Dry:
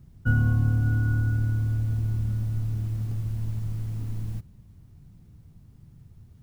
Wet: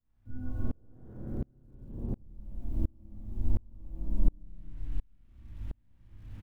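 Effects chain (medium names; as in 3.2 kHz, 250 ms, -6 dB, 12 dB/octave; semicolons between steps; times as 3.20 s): inverse Chebyshev low-pass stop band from 1.9 kHz, stop band 40 dB; bass shelf 180 Hz +8.5 dB; comb 3.4 ms, depth 76%; gain riding within 4 dB 2 s; chorus voices 4, 0.34 Hz, delay 21 ms, depth 3.7 ms; bit crusher 10-bit; 0.62–2.16 s: valve stage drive 28 dB, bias 0.5; echo from a far wall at 93 m, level -15 dB; spring tank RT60 1.5 s, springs 30/43 ms, chirp 80 ms, DRR -6 dB; sawtooth tremolo in dB swelling 1.4 Hz, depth 35 dB; trim -2.5 dB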